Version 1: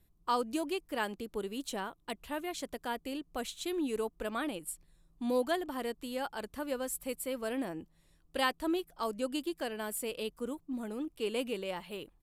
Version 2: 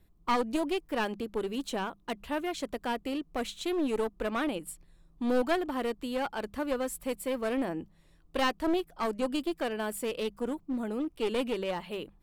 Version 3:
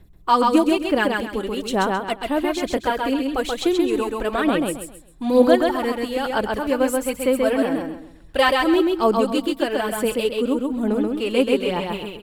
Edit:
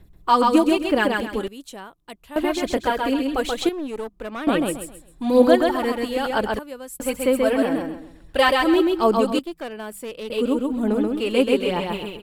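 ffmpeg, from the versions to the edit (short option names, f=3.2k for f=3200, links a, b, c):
-filter_complex "[0:a]asplit=2[a][b];[1:a]asplit=2[c][d];[2:a]asplit=5[e][f][g][h][i];[e]atrim=end=1.482[j];[a]atrim=start=1.478:end=2.362[k];[f]atrim=start=2.358:end=3.692[l];[c]atrim=start=3.688:end=4.472[m];[g]atrim=start=4.468:end=6.592[n];[b]atrim=start=6.588:end=7.002[o];[h]atrim=start=6.998:end=9.392[p];[d]atrim=start=9.388:end=10.302[q];[i]atrim=start=10.298[r];[j][k]acrossfade=d=0.004:c1=hsin:c2=hsin[s];[s][l]acrossfade=d=0.004:c1=hsin:c2=hsin[t];[t][m]acrossfade=d=0.004:c1=hsin:c2=hsin[u];[u][n]acrossfade=d=0.004:c1=hsin:c2=hsin[v];[v][o]acrossfade=d=0.004:c1=hsin:c2=hsin[w];[w][p]acrossfade=d=0.004:c1=hsin:c2=hsin[x];[x][q]acrossfade=d=0.004:c1=hsin:c2=hsin[y];[y][r]acrossfade=d=0.004:c1=hsin:c2=hsin"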